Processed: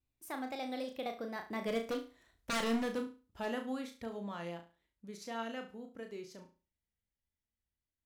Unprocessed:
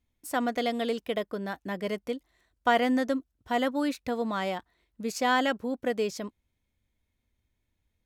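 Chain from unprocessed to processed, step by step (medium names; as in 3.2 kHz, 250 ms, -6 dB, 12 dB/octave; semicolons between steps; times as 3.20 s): Doppler pass-by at 2.12 s, 34 m/s, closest 17 m; in parallel at -0.5 dB: compression, threshold -53 dBFS, peak gain reduction 29 dB; on the sum: vibrato 4 Hz 50 cents; wavefolder -26 dBFS; flutter echo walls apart 6 m, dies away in 0.33 s; trim -3 dB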